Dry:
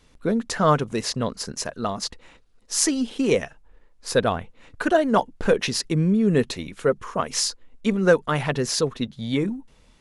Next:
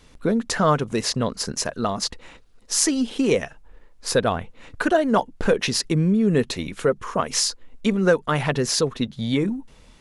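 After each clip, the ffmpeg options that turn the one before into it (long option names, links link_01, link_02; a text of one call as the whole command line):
ffmpeg -i in.wav -af "acompressor=threshold=-30dB:ratio=1.5,volume=5.5dB" out.wav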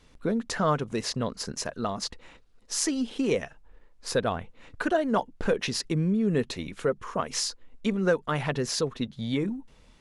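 ffmpeg -i in.wav -af "highshelf=frequency=9600:gain=-6.5,volume=-6dB" out.wav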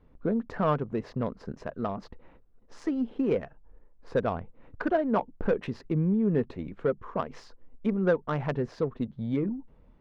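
ffmpeg -i in.wav -af "adynamicsmooth=sensitivity=0.5:basefreq=1100" out.wav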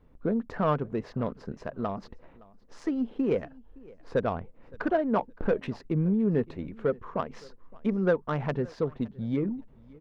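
ffmpeg -i in.wav -af "aecho=1:1:566|1132:0.0668|0.0134" out.wav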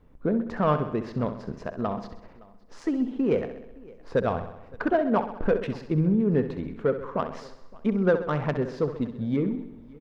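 ffmpeg -i in.wav -af "aecho=1:1:65|130|195|260|325|390|455:0.282|0.169|0.101|0.0609|0.0365|0.0219|0.0131,volume=2.5dB" out.wav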